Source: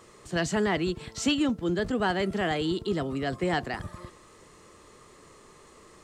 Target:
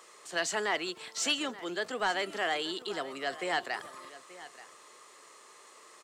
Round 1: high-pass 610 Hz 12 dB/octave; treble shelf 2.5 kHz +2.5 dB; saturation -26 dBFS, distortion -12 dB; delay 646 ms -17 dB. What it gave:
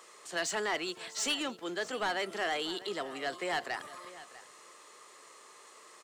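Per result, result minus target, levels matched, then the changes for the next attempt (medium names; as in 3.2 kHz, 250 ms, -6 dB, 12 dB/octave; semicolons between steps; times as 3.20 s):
saturation: distortion +8 dB; echo 234 ms early
change: saturation -19 dBFS, distortion -21 dB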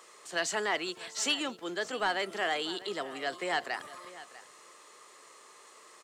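echo 234 ms early
change: delay 880 ms -17 dB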